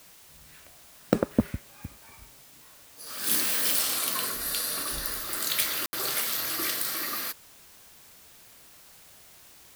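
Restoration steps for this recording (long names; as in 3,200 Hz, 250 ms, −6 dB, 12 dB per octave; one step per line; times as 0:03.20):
ambience match 0:05.86–0:05.93
noise reduction from a noise print 24 dB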